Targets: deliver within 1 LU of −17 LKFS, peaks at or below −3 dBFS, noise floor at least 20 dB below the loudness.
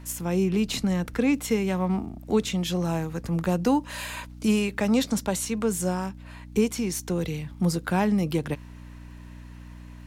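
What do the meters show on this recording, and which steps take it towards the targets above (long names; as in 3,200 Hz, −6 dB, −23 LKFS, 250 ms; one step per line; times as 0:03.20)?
crackle rate 41 per second; mains hum 60 Hz; hum harmonics up to 300 Hz; level of the hum −39 dBFS; integrated loudness −26.5 LKFS; sample peak −11.5 dBFS; target loudness −17.0 LKFS
→ click removal
hum removal 60 Hz, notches 5
level +9.5 dB
brickwall limiter −3 dBFS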